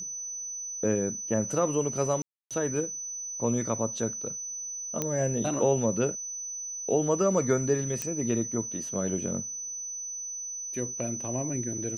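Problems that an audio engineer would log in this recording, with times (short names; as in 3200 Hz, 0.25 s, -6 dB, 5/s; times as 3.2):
tone 6000 Hz -34 dBFS
2.22–2.51 gap 0.287 s
5.02 pop -14 dBFS
8.02 pop -16 dBFS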